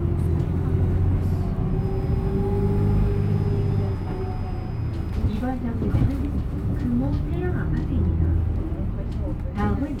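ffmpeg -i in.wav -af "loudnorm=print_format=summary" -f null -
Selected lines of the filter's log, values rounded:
Input Integrated:    -24.8 LUFS
Input True Peak:      -9.2 dBTP
Input LRA:             2.0 LU
Input Threshold:     -34.8 LUFS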